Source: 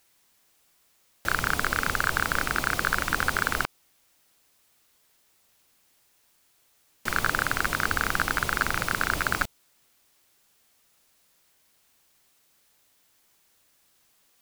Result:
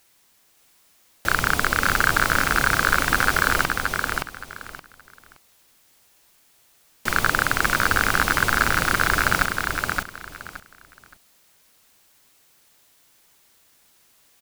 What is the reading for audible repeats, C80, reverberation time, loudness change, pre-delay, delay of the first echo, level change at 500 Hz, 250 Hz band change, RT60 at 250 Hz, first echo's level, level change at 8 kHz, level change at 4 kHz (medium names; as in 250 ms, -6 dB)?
3, no reverb, no reverb, +5.5 dB, no reverb, 571 ms, +6.5 dB, +6.5 dB, no reverb, -4.0 dB, +6.5 dB, +6.5 dB